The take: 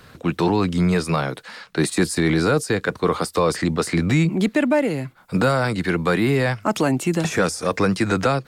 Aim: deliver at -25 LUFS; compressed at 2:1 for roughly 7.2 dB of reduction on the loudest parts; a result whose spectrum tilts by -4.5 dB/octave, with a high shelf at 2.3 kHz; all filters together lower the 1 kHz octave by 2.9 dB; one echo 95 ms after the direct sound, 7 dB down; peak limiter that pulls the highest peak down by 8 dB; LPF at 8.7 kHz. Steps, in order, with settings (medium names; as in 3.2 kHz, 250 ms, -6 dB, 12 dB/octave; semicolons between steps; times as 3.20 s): low-pass 8.7 kHz; peaking EQ 1 kHz -5.5 dB; treble shelf 2.3 kHz +6 dB; compression 2:1, threshold -28 dBFS; peak limiter -21.5 dBFS; delay 95 ms -7 dB; trim +5 dB